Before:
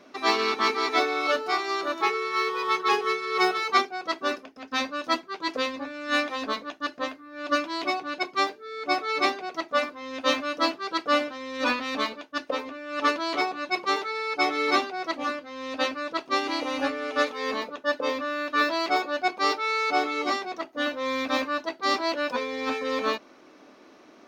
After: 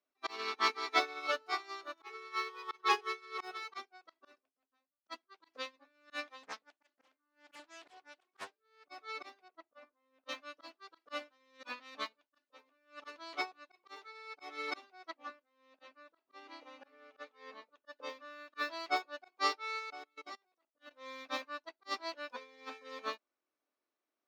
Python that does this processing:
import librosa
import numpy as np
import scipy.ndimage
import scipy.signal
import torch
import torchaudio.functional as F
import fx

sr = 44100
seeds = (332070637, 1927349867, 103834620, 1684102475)

y = fx.studio_fade_out(x, sr, start_s=4.16, length_s=0.9)
y = fx.doppler_dist(y, sr, depth_ms=0.97, at=(6.43, 8.85))
y = fx.lowpass(y, sr, hz=1100.0, slope=6, at=(9.48, 10.29))
y = fx.lowpass(y, sr, hz=2700.0, slope=6, at=(15.1, 17.69))
y = fx.level_steps(y, sr, step_db=14, at=(19.79, 20.91))
y = fx.highpass(y, sr, hz=620.0, slope=6)
y = fx.auto_swell(y, sr, attack_ms=105.0)
y = fx.upward_expand(y, sr, threshold_db=-43.0, expansion=2.5)
y = F.gain(torch.from_numpy(y), -3.0).numpy()